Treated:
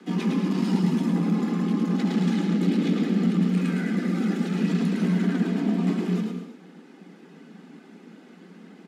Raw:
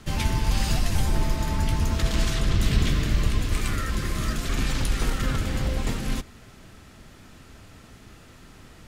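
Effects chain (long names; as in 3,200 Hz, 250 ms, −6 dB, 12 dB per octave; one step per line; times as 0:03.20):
RIAA equalisation playback
reverb reduction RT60 0.69 s
low-shelf EQ 360 Hz −11.5 dB
notch comb filter 430 Hz
soft clipping −18 dBFS, distortion −13 dB
frequency shifter +150 Hz
echo with shifted repeats 108 ms, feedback 31%, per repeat +36 Hz, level −4.5 dB
reverb whose tail is shaped and stops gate 280 ms flat, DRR 6.5 dB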